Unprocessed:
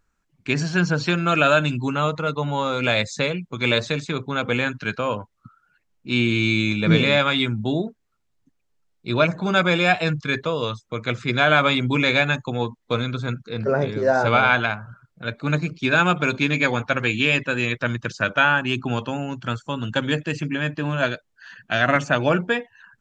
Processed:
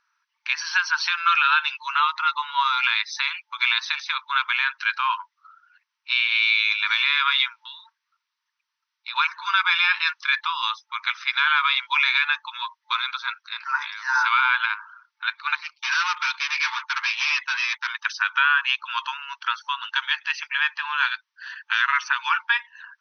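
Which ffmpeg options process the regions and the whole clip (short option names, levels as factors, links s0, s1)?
-filter_complex "[0:a]asettb=1/sr,asplit=3[s0][s1][s2];[s0]atrim=end=7.604[s3];[s1]atrim=start=7.6:end=9.16,asetpts=PTS-STARTPTS,afade=t=in:d=0.004:c=qsin,afade=t=out:st=1.556:d=0.004:c=qsin,highpass=490,acompressor=threshold=0.0158:ratio=2:attack=3.2:release=140:knee=1:detection=peak[s4];[s2]atrim=start=9.156[s5];[s3][s4]acrossfade=d=0.004:c1=hsin:c2=qsin[s6];[s6][s5]acrossfade=d=0.004:c1=qsin:c2=hsin,asettb=1/sr,asplit=3[s7][s8][s9];[s7]atrim=end=15.554[s10];[s8]atrim=start=15.55:end=17.88,asetpts=PTS-STARTPTS,afade=t=in:d=0.004:c=qsin,afade=t=out:st=2.326:d=0.004:c=qsin,volume=16.8,asoftclip=hard,volume=0.0596,agate=range=0.0224:threshold=0.0251:ratio=3:release=100:detection=peak[s11];[s9]atrim=start=17.876[s12];[s10][s11]acrossfade=d=0.004:c1=hsin:c2=qsin[s13];[s13][s12]acrossfade=d=0.004:c1=qsin:c2=hsin,afftfilt=real='re*between(b*sr/4096,880,6200)':imag='im*between(b*sr/4096,880,6200)':win_size=4096:overlap=0.75,alimiter=limit=0.178:level=0:latency=1:release=182,volume=2"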